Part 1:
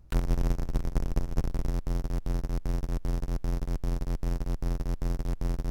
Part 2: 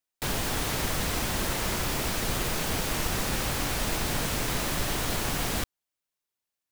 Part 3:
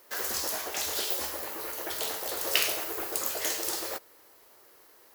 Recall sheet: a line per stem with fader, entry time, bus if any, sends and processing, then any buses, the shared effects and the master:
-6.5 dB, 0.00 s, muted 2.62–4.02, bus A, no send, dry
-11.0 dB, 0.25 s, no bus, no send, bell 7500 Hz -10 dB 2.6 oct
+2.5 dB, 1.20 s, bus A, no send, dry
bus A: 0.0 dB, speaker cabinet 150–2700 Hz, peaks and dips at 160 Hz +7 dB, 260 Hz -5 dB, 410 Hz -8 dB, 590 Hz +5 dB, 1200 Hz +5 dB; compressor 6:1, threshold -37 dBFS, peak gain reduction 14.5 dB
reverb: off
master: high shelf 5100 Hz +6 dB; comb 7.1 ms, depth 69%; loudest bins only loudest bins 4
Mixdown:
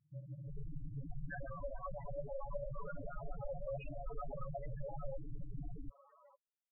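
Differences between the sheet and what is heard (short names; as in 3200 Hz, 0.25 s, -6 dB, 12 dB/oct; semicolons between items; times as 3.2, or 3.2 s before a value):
stem 1 -6.5 dB -> -14.0 dB; master: missing high shelf 5100 Hz +6 dB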